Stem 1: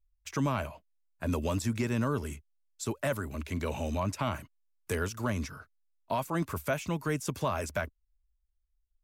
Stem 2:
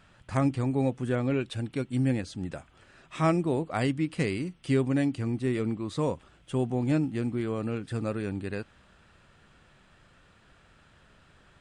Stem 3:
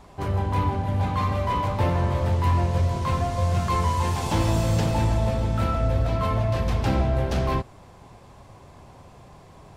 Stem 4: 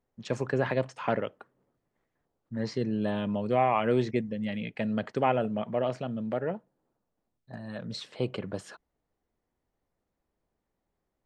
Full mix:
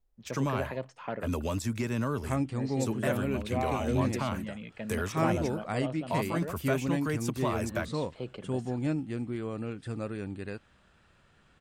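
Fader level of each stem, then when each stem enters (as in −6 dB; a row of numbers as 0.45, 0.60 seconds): −1.0 dB, −4.5 dB, muted, −8.0 dB; 0.00 s, 1.95 s, muted, 0.00 s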